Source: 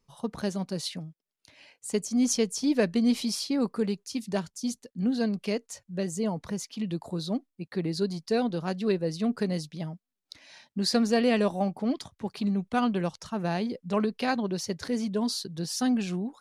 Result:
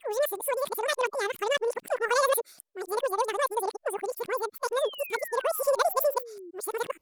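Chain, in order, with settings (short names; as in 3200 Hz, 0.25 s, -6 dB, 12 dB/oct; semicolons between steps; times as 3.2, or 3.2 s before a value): whole clip reversed; speed mistake 33 rpm record played at 78 rpm; painted sound fall, 4.76–6.51, 330–3900 Hz -43 dBFS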